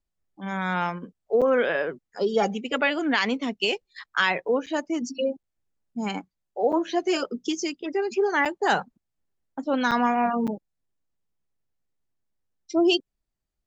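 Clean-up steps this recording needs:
repair the gap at 0:01.41/0:04.66/0:05.43/0:06.72/0:08.45/0:09.91/0:10.47, 6.7 ms

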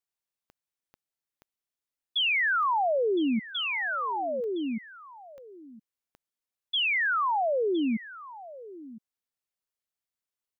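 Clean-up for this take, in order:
click removal
echo removal 1,013 ms −17.5 dB

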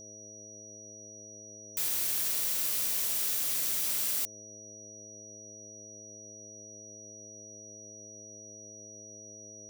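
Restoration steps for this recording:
hum removal 106.3 Hz, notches 6
notch filter 5,800 Hz, Q 30

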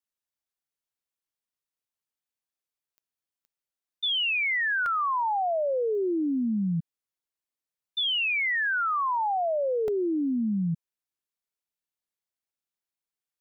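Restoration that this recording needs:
click removal
repair the gap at 0:01.86/0:04.86/0:09.88, 1.7 ms

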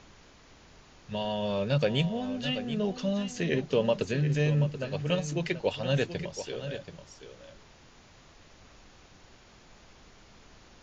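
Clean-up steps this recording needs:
noise reduction from a noise print 19 dB
echo removal 731 ms −11 dB

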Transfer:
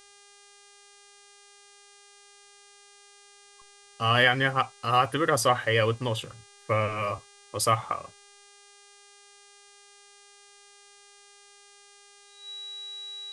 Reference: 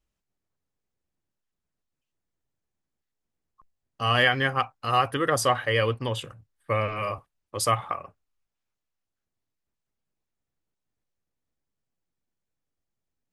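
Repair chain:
hum removal 404.6 Hz, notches 24
notch filter 3,900 Hz, Q 30

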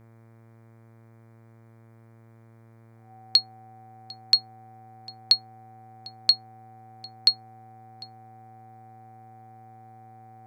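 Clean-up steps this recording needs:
hum removal 113.9 Hz, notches 21
notch filter 760 Hz, Q 30

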